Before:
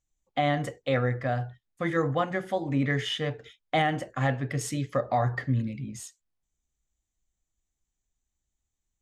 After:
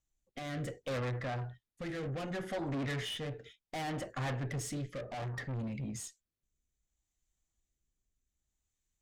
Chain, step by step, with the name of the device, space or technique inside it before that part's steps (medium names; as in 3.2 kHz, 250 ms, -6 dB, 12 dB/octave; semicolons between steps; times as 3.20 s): overdriven rotary cabinet (valve stage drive 34 dB, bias 0.25; rotary cabinet horn 0.65 Hz); trim +1 dB